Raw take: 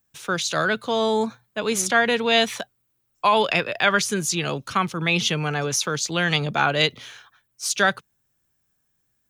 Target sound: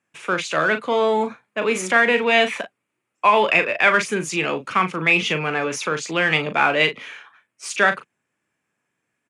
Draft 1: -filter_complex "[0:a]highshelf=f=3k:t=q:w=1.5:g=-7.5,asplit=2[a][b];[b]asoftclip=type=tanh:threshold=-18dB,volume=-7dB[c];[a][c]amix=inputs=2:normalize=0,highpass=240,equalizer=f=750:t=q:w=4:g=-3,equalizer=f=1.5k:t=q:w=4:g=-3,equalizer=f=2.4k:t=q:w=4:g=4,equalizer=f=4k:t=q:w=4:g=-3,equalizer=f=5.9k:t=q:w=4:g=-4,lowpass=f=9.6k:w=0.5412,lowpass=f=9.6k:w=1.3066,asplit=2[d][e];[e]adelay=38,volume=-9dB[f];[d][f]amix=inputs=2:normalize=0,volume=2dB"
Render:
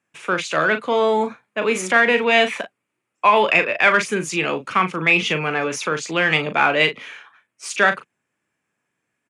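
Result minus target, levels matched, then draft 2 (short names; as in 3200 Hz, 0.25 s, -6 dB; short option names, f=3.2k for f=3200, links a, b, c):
soft clip: distortion -5 dB
-filter_complex "[0:a]highshelf=f=3k:t=q:w=1.5:g=-7.5,asplit=2[a][b];[b]asoftclip=type=tanh:threshold=-26dB,volume=-7dB[c];[a][c]amix=inputs=2:normalize=0,highpass=240,equalizer=f=750:t=q:w=4:g=-3,equalizer=f=1.5k:t=q:w=4:g=-3,equalizer=f=2.4k:t=q:w=4:g=4,equalizer=f=4k:t=q:w=4:g=-3,equalizer=f=5.9k:t=q:w=4:g=-4,lowpass=f=9.6k:w=0.5412,lowpass=f=9.6k:w=1.3066,asplit=2[d][e];[e]adelay=38,volume=-9dB[f];[d][f]amix=inputs=2:normalize=0,volume=2dB"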